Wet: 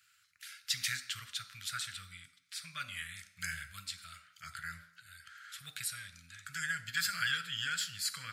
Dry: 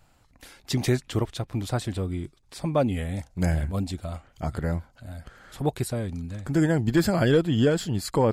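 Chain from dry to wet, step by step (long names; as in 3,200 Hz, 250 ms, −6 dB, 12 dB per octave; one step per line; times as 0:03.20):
elliptic high-pass filter 1,400 Hz, stop band 40 dB
on a send: convolution reverb RT60 0.75 s, pre-delay 3 ms, DRR 5 dB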